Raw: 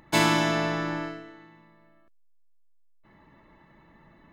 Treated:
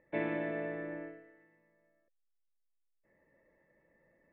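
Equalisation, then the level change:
dynamic equaliser 290 Hz, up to +6 dB, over −39 dBFS, Q 0.9
formant resonators in series e
0.0 dB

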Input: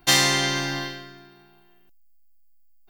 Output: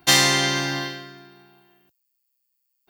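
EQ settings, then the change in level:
high-pass filter 76 Hz
+2.0 dB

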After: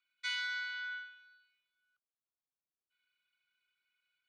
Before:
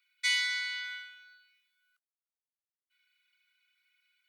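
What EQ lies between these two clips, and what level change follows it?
dynamic equaliser 1,500 Hz, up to +8 dB, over −52 dBFS, Q 3.4
head-to-tape spacing loss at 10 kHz 23 dB
parametric band 2,000 Hz −10.5 dB 0.35 octaves
0.0 dB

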